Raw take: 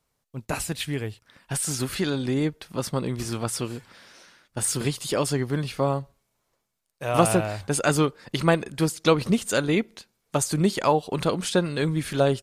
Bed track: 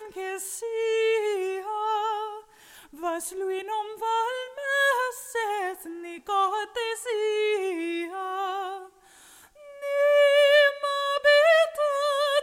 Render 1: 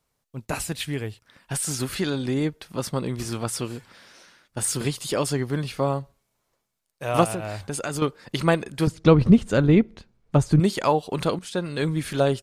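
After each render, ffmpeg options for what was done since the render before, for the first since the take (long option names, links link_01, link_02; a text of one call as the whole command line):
ffmpeg -i in.wav -filter_complex "[0:a]asettb=1/sr,asplit=3[link_01][link_02][link_03];[link_01]atrim=end=7.244[link_04];[link_02]atrim=start=7.24:end=8.02,asetpts=PTS-STARTPTS,afade=type=in:duration=0.004:curve=qsin,afade=type=out:start_time=0.776:duration=0.004:curve=qsin,acompressor=threshold=-25dB:ratio=6:attack=3.2:release=140:knee=1:detection=peak[link_05];[link_03]atrim=start=8.016[link_06];[link_04][link_05]acrossfade=duration=0.004:curve1=hsin:curve2=qsin[link_07];[link_07][link_06]acrossfade=duration=0.004:curve1=qsin:curve2=hsin,asettb=1/sr,asplit=3[link_08][link_09][link_10];[link_08]atrim=end=8.874[link_11];[link_09]atrim=start=8.87:end=10.6,asetpts=PTS-STARTPTS,afade=type=in:duration=0.004:curve=qsin,afade=type=out:start_time=1.726:duration=0.004:curve=qsin,aemphasis=mode=reproduction:type=riaa[link_12];[link_10]atrim=start=10.596[link_13];[link_11][link_12]acrossfade=duration=0.004:curve1=hsin:curve2=qsin[link_14];[link_14][link_13]acrossfade=duration=0.004:curve1=qsin:curve2=hsin,asplit=2[link_15][link_16];[link_15]atrim=end=11.39,asetpts=PTS-STARTPTS,afade=type=out:start_time=11.386:duration=0.004:curve=hsin:silence=0.199526[link_17];[link_16]atrim=start=11.39,asetpts=PTS-STARTPTS,afade=type=in:duration=0.43:silence=0.199526[link_18];[link_17][link_18]concat=n=2:v=0:a=1" out.wav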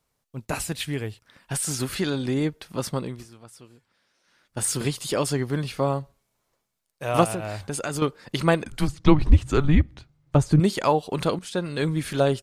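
ffmpeg -i in.wav -filter_complex "[0:a]asettb=1/sr,asplit=3[link_01][link_02][link_03];[link_01]atrim=end=8.644[link_04];[link_02]atrim=start=8.64:end=10.35,asetpts=PTS-STARTPTS,afade=type=in:duration=0.004:curve=qsin,afade=type=out:start_time=1.706:duration=0.004:curve=qsin,afreqshift=-150[link_05];[link_03]atrim=start=10.346[link_06];[link_04][link_05]acrossfade=duration=0.004:curve1=hsin:curve2=qsin[link_07];[link_07][link_06]acrossfade=duration=0.004:curve1=qsin:curve2=hsin,asplit=3[link_08][link_09][link_10];[link_08]atrim=end=3.28,asetpts=PTS-STARTPTS,afade=type=out:start_time=2.92:duration=0.36:silence=0.112202[link_11];[link_09]atrim=start=3.28:end=4.23,asetpts=PTS-STARTPTS,volume=-19dB[link_12];[link_10]atrim=start=4.23,asetpts=PTS-STARTPTS,afade=type=in:duration=0.36:silence=0.112202[link_13];[link_11][link_12][link_13]concat=n=3:v=0:a=1" out.wav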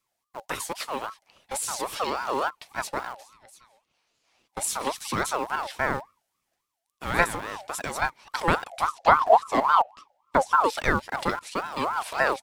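ffmpeg -i in.wav -filter_complex "[0:a]acrossover=split=160|750|1800[link_01][link_02][link_03][link_04];[link_02]aeval=exprs='val(0)*gte(abs(val(0)),0.0168)':channel_layout=same[link_05];[link_01][link_05][link_03][link_04]amix=inputs=4:normalize=0,aeval=exprs='val(0)*sin(2*PI*940*n/s+940*0.3/3.6*sin(2*PI*3.6*n/s))':channel_layout=same" out.wav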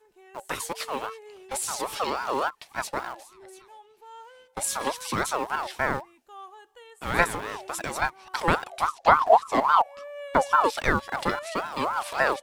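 ffmpeg -i in.wav -i bed.wav -filter_complex "[1:a]volume=-20dB[link_01];[0:a][link_01]amix=inputs=2:normalize=0" out.wav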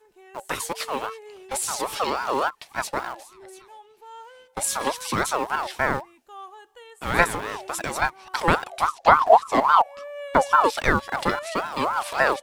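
ffmpeg -i in.wav -af "volume=3dB,alimiter=limit=-1dB:level=0:latency=1" out.wav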